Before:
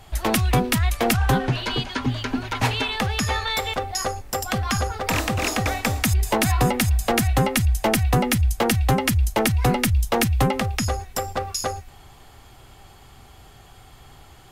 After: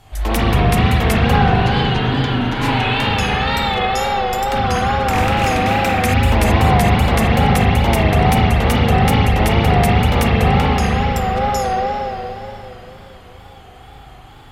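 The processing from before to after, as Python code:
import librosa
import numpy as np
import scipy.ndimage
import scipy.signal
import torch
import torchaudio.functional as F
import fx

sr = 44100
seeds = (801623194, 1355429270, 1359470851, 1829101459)

y = fx.rev_spring(x, sr, rt60_s=3.8, pass_ms=(39, 58), chirp_ms=25, drr_db=-9.5)
y = fx.wow_flutter(y, sr, seeds[0], rate_hz=2.1, depth_cents=80.0)
y = fx.cheby_harmonics(y, sr, harmonics=(5,), levels_db=(-33,), full_scale_db=2.5)
y = y * librosa.db_to_amplitude(-3.5)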